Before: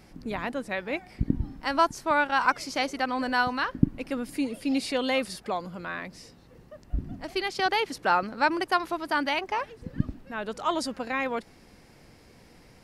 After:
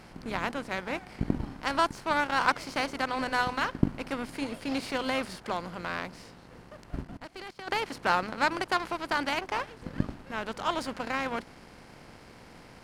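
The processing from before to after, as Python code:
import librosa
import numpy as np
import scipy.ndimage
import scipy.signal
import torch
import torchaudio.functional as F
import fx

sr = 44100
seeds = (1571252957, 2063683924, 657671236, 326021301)

y = fx.bin_compress(x, sr, power=0.6)
y = fx.hum_notches(y, sr, base_hz=50, count=6)
y = fx.power_curve(y, sr, exponent=1.4)
y = fx.level_steps(y, sr, step_db=20, at=(7.01, 7.67), fade=0.02)
y = F.gain(torch.from_numpy(y), -1.5).numpy()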